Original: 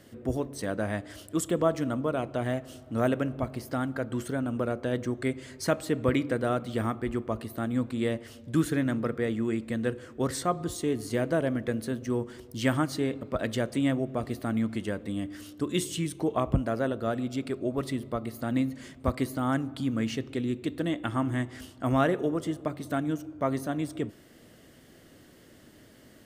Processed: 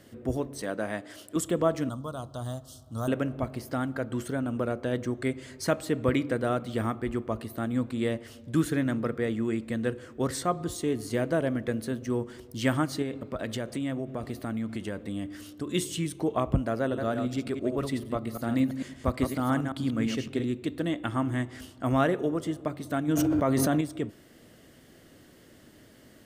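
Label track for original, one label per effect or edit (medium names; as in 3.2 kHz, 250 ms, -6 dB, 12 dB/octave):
0.620000	1.360000	Bessel high-pass 220 Hz
1.890000	3.080000	FFT filter 110 Hz 0 dB, 380 Hz -13 dB, 1.2 kHz -2 dB, 2.3 kHz -29 dB, 3.4 kHz +1 dB, 5.2 kHz +4 dB
13.020000	15.670000	compression 3:1, threshold -29 dBFS
16.810000	20.450000	chunks repeated in reverse 112 ms, level -6 dB
23.080000	23.810000	level flattener amount 100%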